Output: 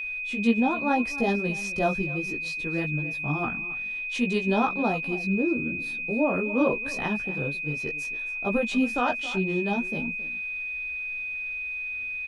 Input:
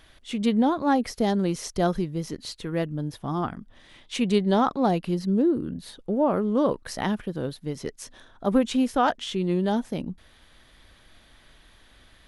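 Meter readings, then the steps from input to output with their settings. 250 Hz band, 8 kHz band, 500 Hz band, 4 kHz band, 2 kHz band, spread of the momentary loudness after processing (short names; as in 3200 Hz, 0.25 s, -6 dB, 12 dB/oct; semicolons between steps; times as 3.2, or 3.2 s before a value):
-3.0 dB, -5.5 dB, -2.5 dB, -3.5 dB, +13.0 dB, 6 LU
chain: high shelf 9400 Hz -7.5 dB; echo 0.27 s -16.5 dB; chorus voices 6, 0.63 Hz, delay 17 ms, depth 4.6 ms; whine 2500 Hz -30 dBFS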